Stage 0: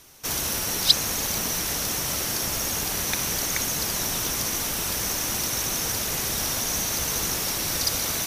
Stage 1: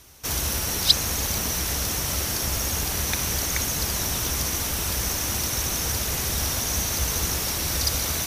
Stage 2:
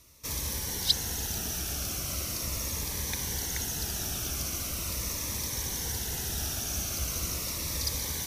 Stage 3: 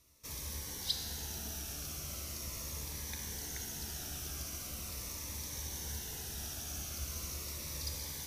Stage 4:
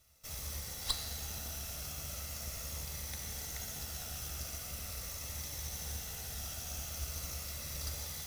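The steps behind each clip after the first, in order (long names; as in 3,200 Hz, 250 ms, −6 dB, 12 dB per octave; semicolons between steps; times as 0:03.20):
parametric band 66 Hz +13 dB 1 octave
phaser whose notches keep moving one way falling 0.4 Hz; level −7 dB
tuned comb filter 73 Hz, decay 1.6 s, harmonics all, mix 80%; level +2 dB
lower of the sound and its delayed copy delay 1.5 ms; level +1.5 dB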